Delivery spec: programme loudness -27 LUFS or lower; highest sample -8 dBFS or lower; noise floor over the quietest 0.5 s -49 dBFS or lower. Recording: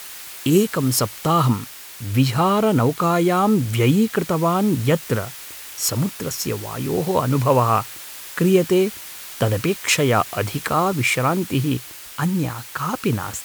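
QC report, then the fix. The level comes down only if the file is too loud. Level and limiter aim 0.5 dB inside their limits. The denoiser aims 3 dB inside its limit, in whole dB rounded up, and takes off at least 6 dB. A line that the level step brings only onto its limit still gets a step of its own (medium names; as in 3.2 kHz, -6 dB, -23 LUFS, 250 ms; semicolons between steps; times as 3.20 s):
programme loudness -20.0 LUFS: fail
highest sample -4.0 dBFS: fail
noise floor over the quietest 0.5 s -36 dBFS: fail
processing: noise reduction 9 dB, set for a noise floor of -36 dBFS; trim -7.5 dB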